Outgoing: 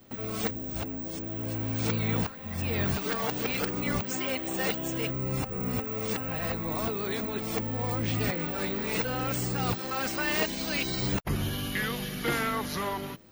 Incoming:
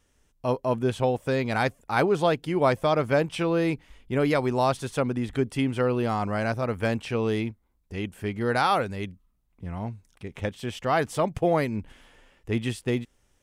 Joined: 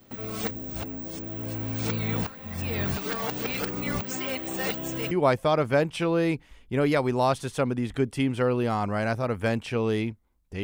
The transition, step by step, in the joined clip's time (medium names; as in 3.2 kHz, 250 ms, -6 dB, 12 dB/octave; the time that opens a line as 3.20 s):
outgoing
5.11 s: go over to incoming from 2.50 s